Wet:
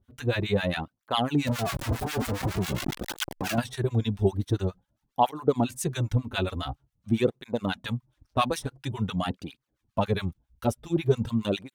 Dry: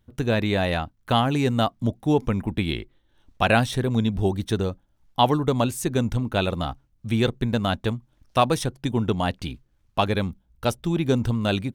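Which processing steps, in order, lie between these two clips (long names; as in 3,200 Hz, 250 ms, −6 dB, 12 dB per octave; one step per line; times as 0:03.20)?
0:01.47–0:03.58: sign of each sample alone
two-band tremolo in antiphase 7.3 Hz, depth 100%, crossover 970 Hz
through-zero flanger with one copy inverted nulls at 0.47 Hz, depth 6.6 ms
level +3 dB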